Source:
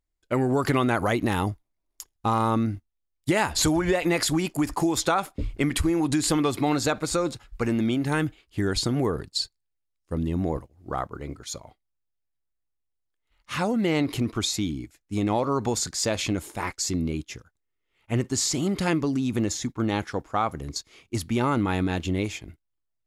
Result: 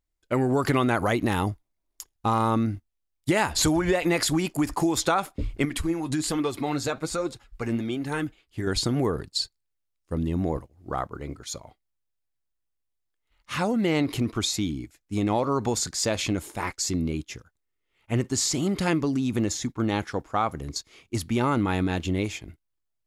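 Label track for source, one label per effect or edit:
5.650000	8.670000	flange 1.2 Hz, delay 1.9 ms, depth 6.8 ms, regen +48%

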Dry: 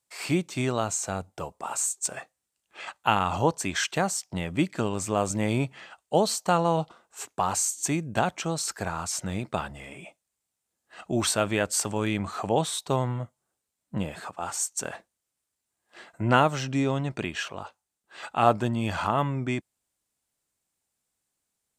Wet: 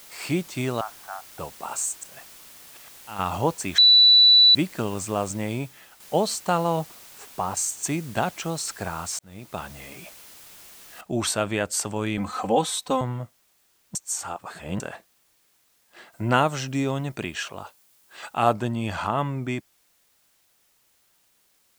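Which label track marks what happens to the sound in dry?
0.810000	1.390000	elliptic band-pass 740–1800 Hz, stop band 50 dB
1.960000	3.190000	slow attack 406 ms
3.780000	4.550000	bleep 3.96 kHz -10.5 dBFS
5.080000	6.000000	fade out, to -8.5 dB
6.790000	7.570000	treble shelf 2.2 kHz -11.5 dB
9.190000	9.780000	fade in
11.010000	11.010000	noise floor step -47 dB -65 dB
12.170000	13.010000	comb 3.9 ms, depth 99%
13.950000	14.800000	reverse
16.120000	18.530000	treble shelf 6.4 kHz +6.5 dB

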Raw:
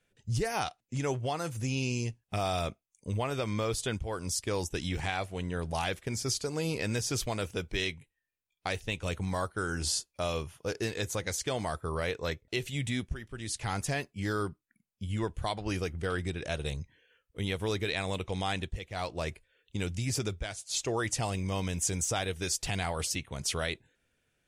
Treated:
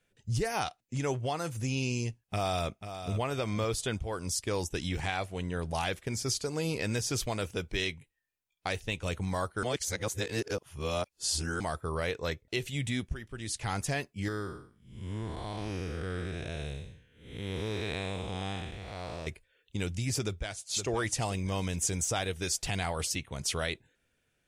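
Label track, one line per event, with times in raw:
2.200000	3.150000	echo throw 490 ms, feedback 20%, level -10 dB
9.630000	11.600000	reverse
14.280000	19.270000	spectral blur width 279 ms
20.240000	20.710000	echo throw 520 ms, feedback 35%, level -8 dB

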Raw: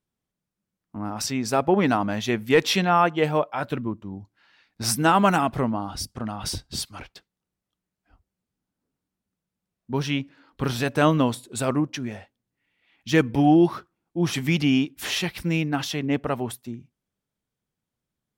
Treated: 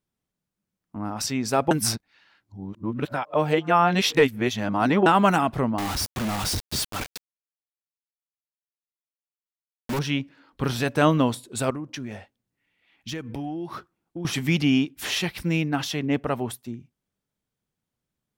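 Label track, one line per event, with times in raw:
1.710000	5.060000	reverse
5.780000	9.990000	companded quantiser 2-bit
11.700000	14.250000	compression 10:1, threshold -29 dBFS

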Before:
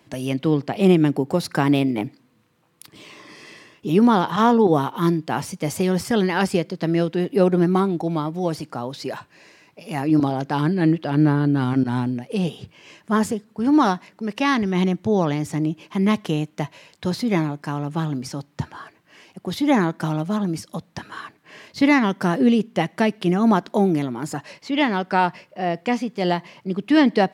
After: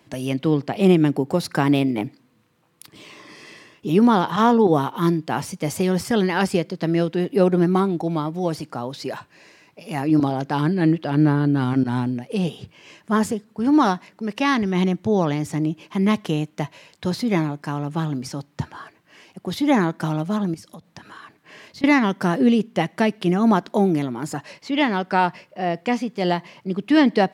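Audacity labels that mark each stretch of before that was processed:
20.540000	21.840000	compression 3:1, threshold -39 dBFS

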